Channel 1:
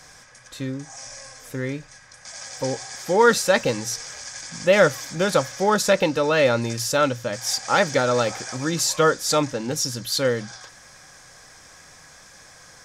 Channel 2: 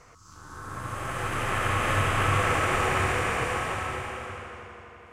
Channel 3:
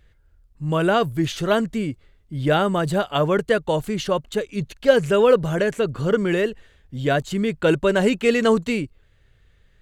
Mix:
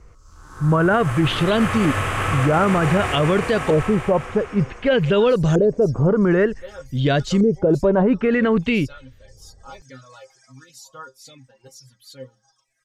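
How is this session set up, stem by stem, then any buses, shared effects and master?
−9.5 dB, 1.95 s, no send, stiff-string resonator 130 Hz, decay 0.23 s, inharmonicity 0.002; auto-filter notch sine 0.69 Hz 220–2,400 Hz; reverb reduction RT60 1.1 s
−6.0 dB, 0.00 s, no send, automatic gain control gain up to 9 dB
+1.5 dB, 0.00 s, no send, auto-filter low-pass saw up 0.54 Hz 420–6,600 Hz; low-shelf EQ 320 Hz +7.5 dB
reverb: not used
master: brickwall limiter −9 dBFS, peak gain reduction 11 dB

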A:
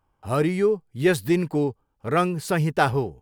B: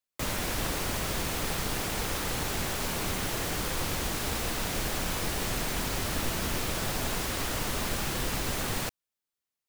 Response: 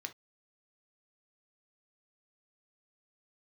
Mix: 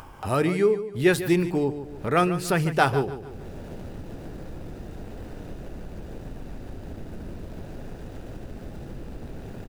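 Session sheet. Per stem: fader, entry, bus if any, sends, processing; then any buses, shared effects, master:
−2.5 dB, 0.00 s, send −4 dB, echo send −10.5 dB, no processing
−16.5 dB, 0.75 s, no send, echo send −3.5 dB, running median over 41 samples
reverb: on, pre-delay 3 ms
echo: repeating echo 146 ms, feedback 26%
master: upward compression, threshold −24 dBFS

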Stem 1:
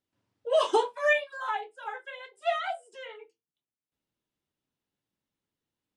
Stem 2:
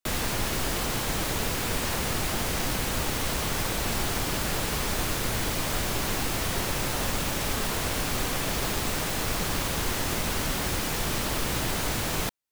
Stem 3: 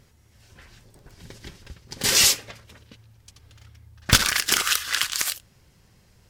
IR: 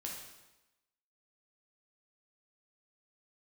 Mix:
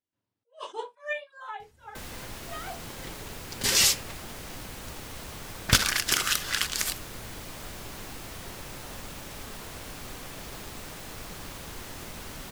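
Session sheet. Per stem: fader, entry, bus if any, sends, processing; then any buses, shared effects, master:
−7.5 dB, 0.00 s, no send, level that may rise only so fast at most 260 dB per second
−12.5 dB, 1.90 s, no send, no processing
−4.0 dB, 1.60 s, no send, no processing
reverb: not used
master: no processing

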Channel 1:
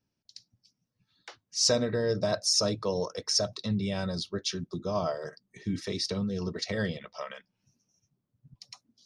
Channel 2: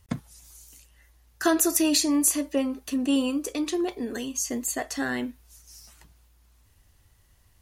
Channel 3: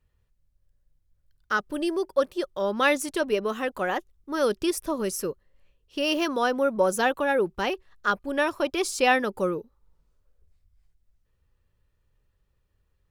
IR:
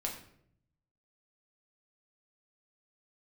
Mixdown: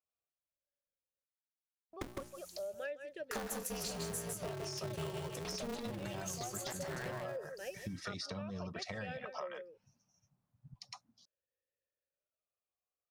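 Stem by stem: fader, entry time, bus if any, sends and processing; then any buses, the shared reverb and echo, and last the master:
−0.5 dB, 2.20 s, no send, no echo send, drawn EQ curve 170 Hz 0 dB, 400 Hz −9 dB, 790 Hz +7 dB, 3,600 Hz −3 dB; downward compressor, threshold −33 dBFS, peak gain reduction 11 dB
−5.5 dB, 1.90 s, no send, echo send −4 dB, downward expander −46 dBFS; mains-hum notches 60/120/180/240/300/360 Hz; ring modulator with a square carrier 120 Hz
−7.0 dB, 0.00 s, muted 0:01.24–0:01.93, no send, echo send −12 dB, formant filter swept between two vowels a-e 0.47 Hz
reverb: not used
echo: single-tap delay 157 ms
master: downward compressor 6 to 1, threshold −39 dBFS, peak gain reduction 16 dB

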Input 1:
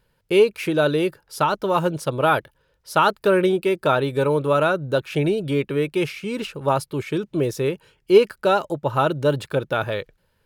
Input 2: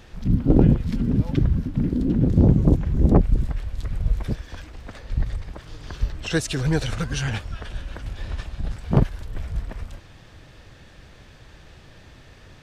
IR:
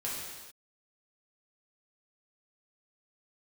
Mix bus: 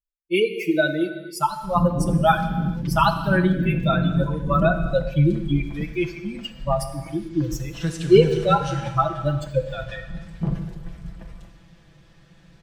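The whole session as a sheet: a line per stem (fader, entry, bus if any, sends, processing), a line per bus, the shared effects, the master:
+2.0 dB, 0.00 s, send −8.5 dB, spectral dynamics exaggerated over time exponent 3
−13.0 dB, 1.50 s, send −4.5 dB, parametric band 170 Hz +12 dB 0.32 octaves; brickwall limiter −8 dBFS, peak gain reduction 8 dB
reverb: on, pre-delay 3 ms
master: comb filter 6 ms, depth 71%

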